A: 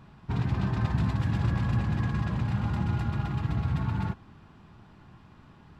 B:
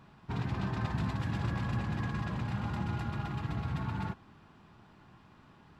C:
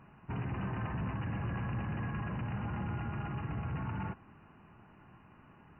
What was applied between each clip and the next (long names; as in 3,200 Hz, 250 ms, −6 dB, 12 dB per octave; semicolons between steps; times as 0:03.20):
low-shelf EQ 160 Hz −8 dB; level −2 dB
soft clipping −30.5 dBFS, distortion −14 dB; linear-phase brick-wall low-pass 3,000 Hz